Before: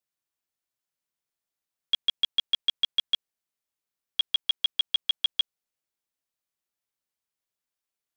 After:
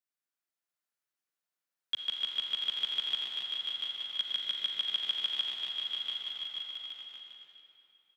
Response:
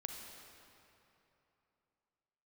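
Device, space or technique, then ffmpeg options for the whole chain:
stadium PA: -filter_complex "[0:a]highpass=130,highpass=130,equalizer=f=1.5k:t=o:w=0.82:g=5,aecho=1:1:189.5|233.2|274.1:0.398|0.251|0.316[a];[1:a]atrim=start_sample=2205[b];[a][b]afir=irnorm=-1:irlink=0,aecho=1:1:690|1173|1511|1748|1913:0.631|0.398|0.251|0.158|0.1,volume=-4dB"

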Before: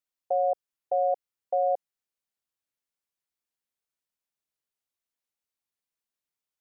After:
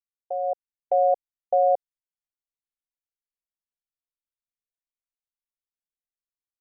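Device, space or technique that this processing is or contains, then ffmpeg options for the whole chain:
voice memo with heavy noise removal: -af "anlmdn=1,dynaudnorm=f=410:g=3:m=10.5dB,volume=-5dB"

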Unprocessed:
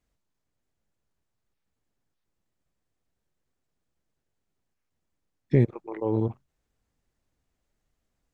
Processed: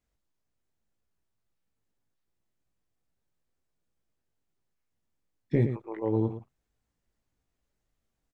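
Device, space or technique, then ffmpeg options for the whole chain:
slapback doubling: -filter_complex "[0:a]asplit=3[a][b][c];[b]adelay=18,volume=-6dB[d];[c]adelay=112,volume=-9dB[e];[a][d][e]amix=inputs=3:normalize=0,volume=-4.5dB"

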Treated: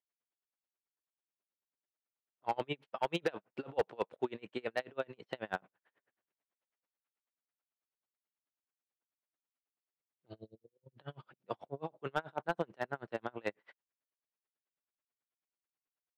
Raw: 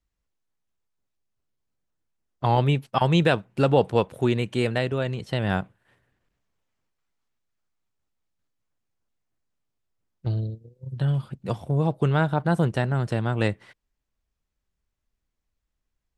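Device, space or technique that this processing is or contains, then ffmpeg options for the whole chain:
helicopter radio: -af "highpass=390,lowpass=3k,aeval=exprs='val(0)*pow(10,-34*(0.5-0.5*cos(2*PI*9.2*n/s))/20)':c=same,asoftclip=type=hard:threshold=-19.5dB,volume=-3.5dB"

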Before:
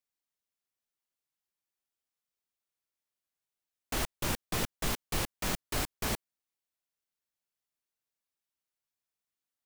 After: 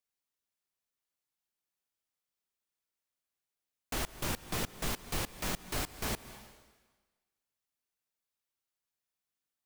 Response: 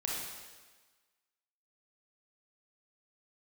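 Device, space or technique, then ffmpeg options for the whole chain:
ducked reverb: -filter_complex "[0:a]asplit=3[a][b][c];[1:a]atrim=start_sample=2205[d];[b][d]afir=irnorm=-1:irlink=0[e];[c]apad=whole_len=425698[f];[e][f]sidechaincompress=threshold=-45dB:ratio=6:attack=16:release=152,volume=-8.5dB[g];[a][g]amix=inputs=2:normalize=0,volume=-3dB"

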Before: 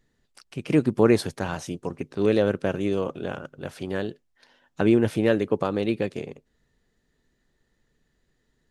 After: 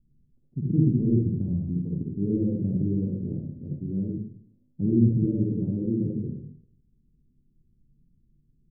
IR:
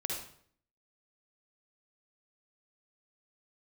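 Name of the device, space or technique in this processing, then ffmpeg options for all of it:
club heard from the street: -filter_complex "[0:a]alimiter=limit=-13dB:level=0:latency=1:release=12,lowpass=f=240:w=0.5412,lowpass=f=240:w=1.3066[a];[1:a]atrim=start_sample=2205[b];[a][b]afir=irnorm=-1:irlink=0,volume=4.5dB"

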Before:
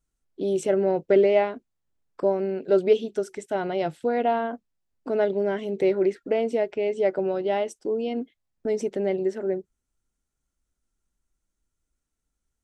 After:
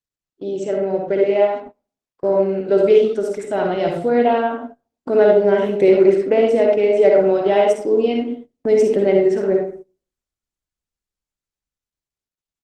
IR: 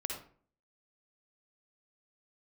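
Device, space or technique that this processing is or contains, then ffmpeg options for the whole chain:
speakerphone in a meeting room: -filter_complex "[0:a]asettb=1/sr,asplit=3[a][b][c];[a]atrim=end=2.684[d];[b]atrim=start=2.68:end=4.29,asetpts=PTS-STARTPTS,afade=t=in:d=0.004:c=qsin,afade=t=out:st=1.606:d=0.004:c=qsin,equalizer=f=210:w=7.1:g=3[e];[c]atrim=start=4.286[f];[d][e]acrossfade=d=0.004:c1=hsin:c2=qsin[g];[g][f]acrossfade=d=0.004:c1=qsin:c2=hsin[h];[1:a]atrim=start_sample=2205[i];[h][i]afir=irnorm=-1:irlink=0,asplit=2[j][k];[k]adelay=140,highpass=300,lowpass=3.4k,asoftclip=type=hard:threshold=-14.5dB,volume=-20dB[l];[j][l]amix=inputs=2:normalize=0,dynaudnorm=f=230:g=17:m=12dB,agate=range=-21dB:threshold=-33dB:ratio=16:detection=peak" -ar 48000 -c:a libopus -b:a 20k

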